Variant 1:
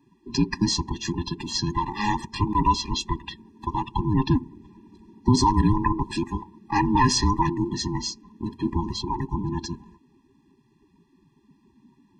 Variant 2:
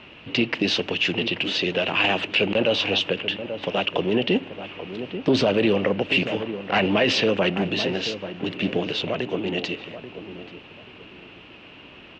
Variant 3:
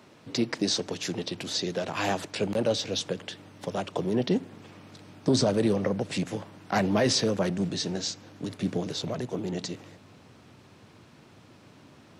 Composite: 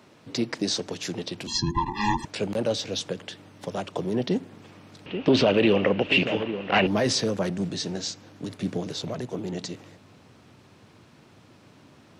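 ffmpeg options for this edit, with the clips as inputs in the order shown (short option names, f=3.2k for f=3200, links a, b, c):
-filter_complex "[2:a]asplit=3[a][b][c];[a]atrim=end=1.472[d];[0:a]atrim=start=1.468:end=2.252[e];[b]atrim=start=2.248:end=5.062[f];[1:a]atrim=start=5.058:end=6.872[g];[c]atrim=start=6.868[h];[d][e]acrossfade=d=0.004:c1=hsin:c2=hsin[i];[i][f]acrossfade=d=0.004:c1=hsin:c2=hsin[j];[j][g]acrossfade=d=0.004:c1=hsin:c2=hsin[k];[k][h]acrossfade=d=0.004:c1=hsin:c2=hsin"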